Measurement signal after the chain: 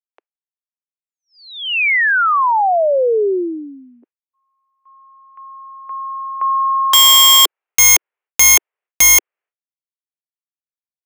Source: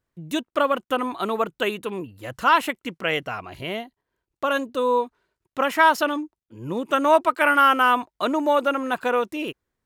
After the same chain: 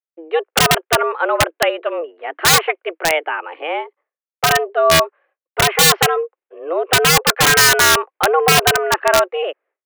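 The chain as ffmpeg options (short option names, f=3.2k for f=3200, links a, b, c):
-af "highpass=f=210:t=q:w=0.5412,highpass=f=210:t=q:w=1.307,lowpass=f=2.5k:t=q:w=0.5176,lowpass=f=2.5k:t=q:w=0.7071,lowpass=f=2.5k:t=q:w=1.932,afreqshift=160,aeval=exprs='(mod(4.73*val(0)+1,2)-1)/4.73':c=same,agate=range=-33dB:threshold=-56dB:ratio=3:detection=peak,volume=8.5dB"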